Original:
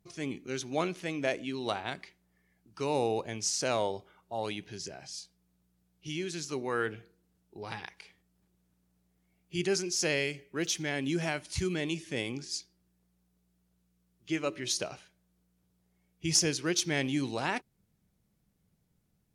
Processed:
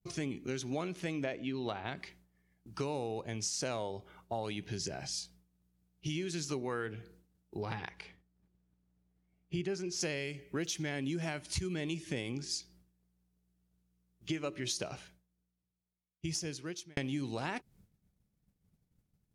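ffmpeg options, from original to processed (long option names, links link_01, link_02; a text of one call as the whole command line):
ffmpeg -i in.wav -filter_complex "[0:a]asettb=1/sr,asplit=3[link_01][link_02][link_03];[link_01]atrim=end=1.244[link_04];[link_02]atrim=start=1.24:end=1.97,asetpts=PTS-STARTPTS,afade=type=in:duration=0.004:curve=qsin,afade=type=out:start_time=0.726:duration=0.004:curve=qsin,lowpass=4100[link_05];[link_03]atrim=start=1.966[link_06];[link_04][link_05]acrossfade=duration=0.004:curve1=hsin:curve2=qsin[link_07];[link_07][link_06]acrossfade=duration=0.004:curve1=qsin:curve2=hsin,asettb=1/sr,asplit=3[link_08][link_09][link_10];[link_08]atrim=end=7.654[link_11];[link_09]atrim=start=7.65:end=10.01,asetpts=PTS-STARTPTS,afade=type=in:duration=0.004:curve=qsin,afade=type=out:start_time=2.356:duration=0.004:curve=qsin,lowpass=frequency=2700:poles=1[link_12];[link_10]atrim=start=10.006[link_13];[link_11][link_12]acrossfade=duration=0.004:curve1=hsin:curve2=qsin[link_14];[link_14][link_13]acrossfade=duration=0.004:curve1=qsin:curve2=hsin,asplit=2[link_15][link_16];[link_15]atrim=end=16.97,asetpts=PTS-STARTPTS,afade=type=out:start_time=14.94:duration=2.03[link_17];[link_16]atrim=start=16.97,asetpts=PTS-STARTPTS,afade=type=in:duration=0.004:curve=hsin[link_18];[link_17][link_18]concat=n=2:v=0:a=1,lowshelf=frequency=200:gain=7.5,agate=range=-33dB:threshold=-59dB:ratio=3:detection=peak,acompressor=threshold=-39dB:ratio=6,volume=5dB" out.wav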